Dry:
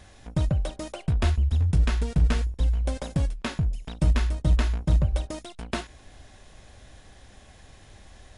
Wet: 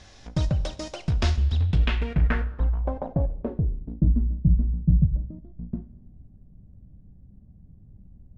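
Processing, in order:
four-comb reverb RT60 1.2 s, combs from 30 ms, DRR 15 dB
low-pass filter sweep 5,500 Hz → 180 Hz, 0:01.36–0:04.35

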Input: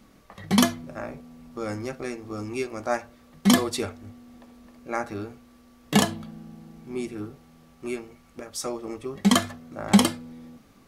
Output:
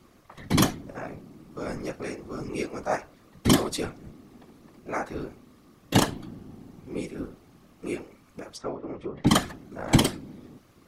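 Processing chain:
random phases in short frames
0:08.50–0:09.27: treble cut that deepens with the level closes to 1,700 Hz, closed at −29.5 dBFS
level −1.5 dB

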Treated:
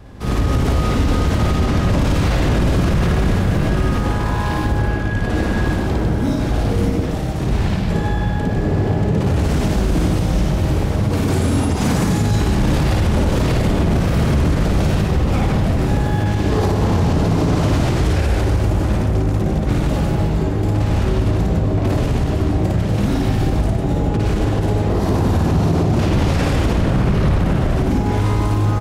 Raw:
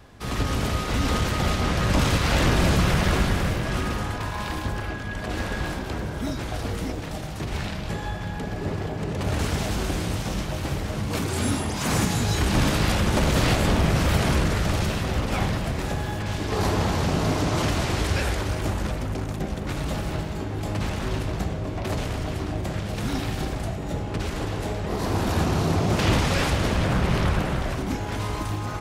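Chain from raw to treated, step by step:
tilt shelving filter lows +5 dB, about 710 Hz
on a send: loudspeakers that aren't time-aligned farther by 19 metres −1 dB, 52 metres −4 dB
on the sum: boost into a limiter +12.5 dB
level −7.5 dB

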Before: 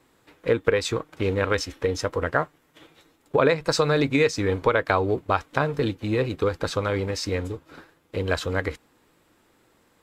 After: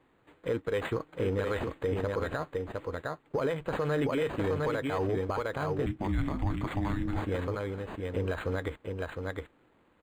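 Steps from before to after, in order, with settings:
single-tap delay 709 ms −5.5 dB
0:05.86–0:07.22: frequency shifter −410 Hz
in parallel at −5.5 dB: hard clipping −16.5 dBFS, distortion −13 dB
on the sum: brickwall limiter −14 dBFS, peak gain reduction 10.5 dB
linearly interpolated sample-rate reduction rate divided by 8×
level −7.5 dB

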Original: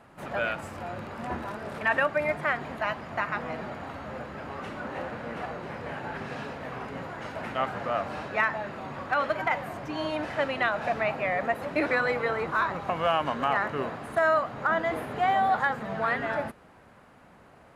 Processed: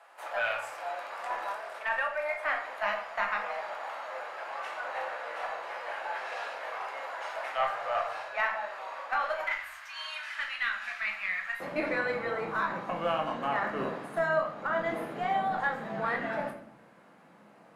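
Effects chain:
sub-octave generator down 2 octaves, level +1 dB
high-pass filter 620 Hz 24 dB per octave, from 0:09.44 1,400 Hz, from 0:11.60 170 Hz
speech leveller within 4 dB 0.5 s
harmonic generator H 2 −20 dB, 4 −44 dB, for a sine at −13.5 dBFS
rectangular room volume 95 cubic metres, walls mixed, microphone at 0.72 metres
level −4.5 dB

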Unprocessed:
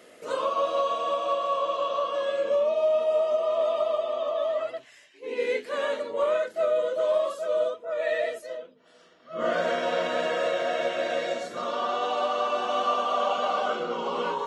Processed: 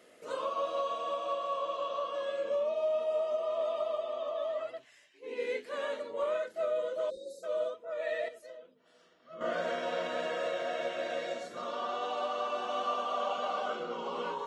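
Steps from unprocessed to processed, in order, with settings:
0:07.10–0:07.44: time-frequency box erased 580–3,600 Hz
0:08.28–0:09.41: downward compressor 6 to 1, threshold −37 dBFS, peak gain reduction 9 dB
level −7.5 dB

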